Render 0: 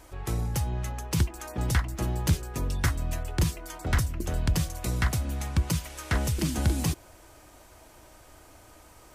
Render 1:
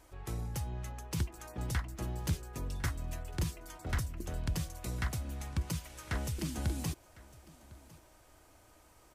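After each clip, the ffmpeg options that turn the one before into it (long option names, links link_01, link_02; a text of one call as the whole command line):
ffmpeg -i in.wav -af "aecho=1:1:1054:0.0841,volume=-9dB" out.wav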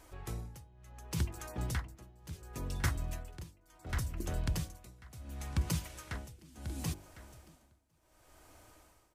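ffmpeg -i in.wav -af "tremolo=f=0.7:d=0.94,bandreject=frequency=48.58:width_type=h:width=4,bandreject=frequency=97.16:width_type=h:width=4,bandreject=frequency=145.74:width_type=h:width=4,bandreject=frequency=194.32:width_type=h:width=4,bandreject=frequency=242.9:width_type=h:width=4,bandreject=frequency=291.48:width_type=h:width=4,bandreject=frequency=340.06:width_type=h:width=4,bandreject=frequency=388.64:width_type=h:width=4,bandreject=frequency=437.22:width_type=h:width=4,bandreject=frequency=485.8:width_type=h:width=4,bandreject=frequency=534.38:width_type=h:width=4,bandreject=frequency=582.96:width_type=h:width=4,bandreject=frequency=631.54:width_type=h:width=4,bandreject=frequency=680.12:width_type=h:width=4,bandreject=frequency=728.7:width_type=h:width=4,bandreject=frequency=777.28:width_type=h:width=4,bandreject=frequency=825.86:width_type=h:width=4,bandreject=frequency=874.44:width_type=h:width=4,bandreject=frequency=923.02:width_type=h:width=4,volume=3dB" out.wav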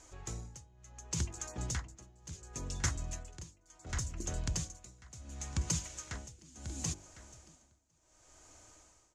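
ffmpeg -i in.wav -af "lowpass=frequency=6800:width_type=q:width=6.1,volume=-2.5dB" out.wav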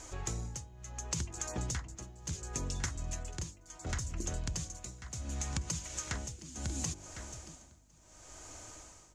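ffmpeg -i in.wav -af "acompressor=threshold=-42dB:ratio=10,aeval=exprs='val(0)+0.000178*(sin(2*PI*50*n/s)+sin(2*PI*2*50*n/s)/2+sin(2*PI*3*50*n/s)/3+sin(2*PI*4*50*n/s)/4+sin(2*PI*5*50*n/s)/5)':channel_layout=same,volume=9dB" out.wav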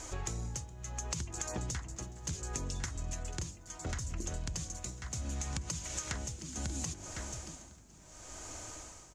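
ffmpeg -i in.wav -filter_complex "[0:a]acompressor=threshold=-38dB:ratio=6,asplit=6[link_01][link_02][link_03][link_04][link_05][link_06];[link_02]adelay=418,afreqshift=40,volume=-23dB[link_07];[link_03]adelay=836,afreqshift=80,volume=-26.9dB[link_08];[link_04]adelay=1254,afreqshift=120,volume=-30.8dB[link_09];[link_05]adelay=1672,afreqshift=160,volume=-34.6dB[link_10];[link_06]adelay=2090,afreqshift=200,volume=-38.5dB[link_11];[link_01][link_07][link_08][link_09][link_10][link_11]amix=inputs=6:normalize=0,volume=4dB" out.wav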